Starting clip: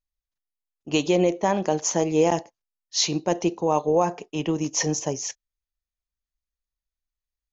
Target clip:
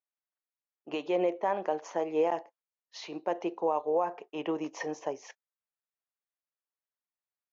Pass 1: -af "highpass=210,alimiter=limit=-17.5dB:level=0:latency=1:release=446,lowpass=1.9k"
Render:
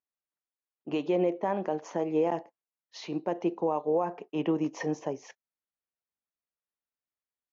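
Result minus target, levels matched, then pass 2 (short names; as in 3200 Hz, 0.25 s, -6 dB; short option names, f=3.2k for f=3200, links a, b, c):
250 Hz band +4.0 dB
-af "highpass=480,alimiter=limit=-17.5dB:level=0:latency=1:release=446,lowpass=1.9k"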